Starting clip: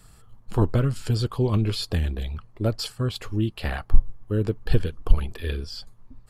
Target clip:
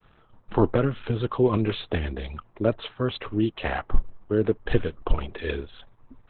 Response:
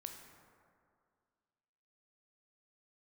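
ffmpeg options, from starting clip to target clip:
-filter_complex "[0:a]acrossover=split=250 3800:gain=0.251 1 0.0708[link_01][link_02][link_03];[link_01][link_02][link_03]amix=inputs=3:normalize=0,agate=range=-33dB:threshold=-57dB:ratio=3:detection=peak,volume=6.5dB" -ar 48000 -c:a libopus -b:a 8k

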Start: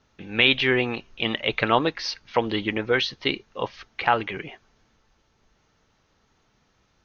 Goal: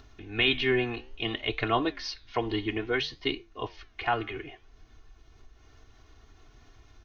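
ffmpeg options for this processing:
ffmpeg -i in.wav -af "lowshelf=frequency=130:gain=12,aecho=1:1:2.8:0.86,acompressor=mode=upward:threshold=-33dB:ratio=2.5,flanger=delay=7.2:depth=8.6:regen=-83:speed=0.59:shape=sinusoidal,volume=-4.5dB" out.wav

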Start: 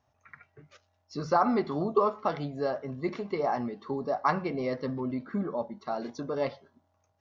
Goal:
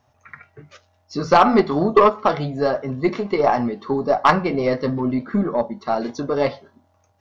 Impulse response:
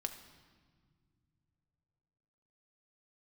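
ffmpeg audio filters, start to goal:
-af "flanger=delay=8.1:depth=2.3:regen=-68:speed=0.36:shape=triangular,aeval=exprs='0.168*(cos(1*acos(clip(val(0)/0.168,-1,1)))-cos(1*PI/2))+0.00299*(cos(2*acos(clip(val(0)/0.168,-1,1)))-cos(2*PI/2))+0.0335*(cos(3*acos(clip(val(0)/0.168,-1,1)))-cos(3*PI/2))+0.00422*(cos(4*acos(clip(val(0)/0.168,-1,1)))-cos(4*PI/2))':channel_layout=same,apsyclip=25dB,volume=-2.5dB"

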